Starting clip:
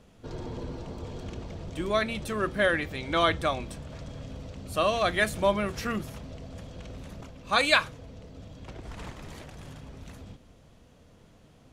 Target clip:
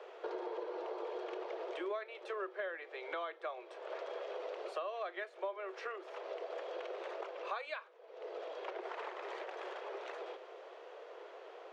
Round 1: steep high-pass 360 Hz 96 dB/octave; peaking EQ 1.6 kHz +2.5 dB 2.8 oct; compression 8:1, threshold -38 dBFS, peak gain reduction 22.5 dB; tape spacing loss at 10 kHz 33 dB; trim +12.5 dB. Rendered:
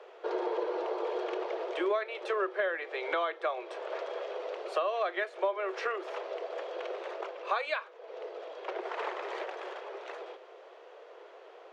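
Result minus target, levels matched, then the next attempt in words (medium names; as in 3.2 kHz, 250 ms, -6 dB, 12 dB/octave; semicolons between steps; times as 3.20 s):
compression: peak gain reduction -9.5 dB
steep high-pass 360 Hz 96 dB/octave; peaking EQ 1.6 kHz +2.5 dB 2.8 oct; compression 8:1, threshold -49 dBFS, peak gain reduction 32 dB; tape spacing loss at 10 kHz 33 dB; trim +12.5 dB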